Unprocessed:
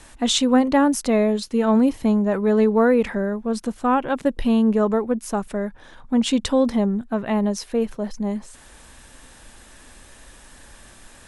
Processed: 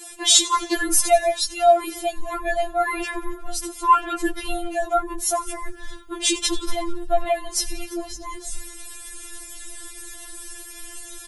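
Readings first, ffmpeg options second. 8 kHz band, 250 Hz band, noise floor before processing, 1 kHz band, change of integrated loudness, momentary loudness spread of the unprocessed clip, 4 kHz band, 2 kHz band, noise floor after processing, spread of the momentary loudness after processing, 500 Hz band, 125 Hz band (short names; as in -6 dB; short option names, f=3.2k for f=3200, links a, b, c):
+10.5 dB, -13.0 dB, -48 dBFS, +4.5 dB, -1.0 dB, 9 LU, +6.0 dB, +2.5 dB, -40 dBFS, 19 LU, -3.0 dB, n/a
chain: -filter_complex "[0:a]aemphasis=mode=production:type=50kf,afreqshift=31,asplit=2[a][b];[b]asplit=5[c][d][e][f][g];[c]adelay=90,afreqshift=-73,volume=-19dB[h];[d]adelay=180,afreqshift=-146,volume=-23.6dB[i];[e]adelay=270,afreqshift=-219,volume=-28.2dB[j];[f]adelay=360,afreqshift=-292,volume=-32.7dB[k];[g]adelay=450,afreqshift=-365,volume=-37.3dB[l];[h][i][j][k][l]amix=inputs=5:normalize=0[m];[a][m]amix=inputs=2:normalize=0,asubboost=boost=8.5:cutoff=170,afftfilt=real='re*4*eq(mod(b,16),0)':imag='im*4*eq(mod(b,16),0)':win_size=2048:overlap=0.75,volume=5.5dB"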